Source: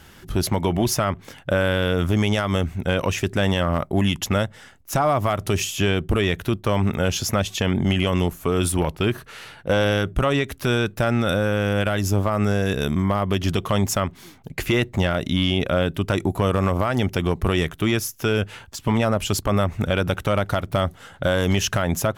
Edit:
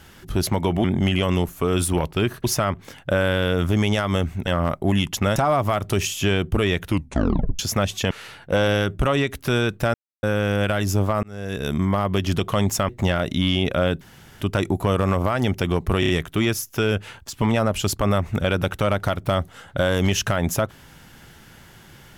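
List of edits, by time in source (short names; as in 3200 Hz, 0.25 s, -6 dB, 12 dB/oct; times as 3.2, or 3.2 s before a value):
2.87–3.56 cut
4.45–4.93 cut
6.42 tape stop 0.74 s
7.68–9.28 move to 0.84
11.11–11.4 mute
12.4–12.97 fade in
14.06–14.84 cut
15.96 insert room tone 0.40 s
17.55 stutter 0.03 s, 4 plays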